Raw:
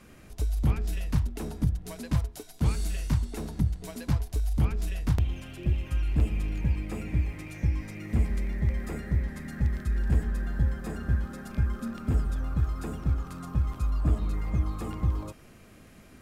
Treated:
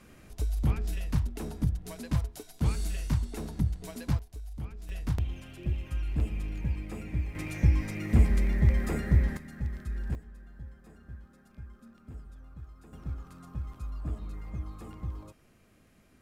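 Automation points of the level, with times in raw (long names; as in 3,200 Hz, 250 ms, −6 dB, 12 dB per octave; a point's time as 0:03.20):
−2 dB
from 0:04.19 −13.5 dB
from 0:04.89 −4.5 dB
from 0:07.35 +4 dB
from 0:09.37 −7 dB
from 0:10.15 −19 dB
from 0:12.93 −10 dB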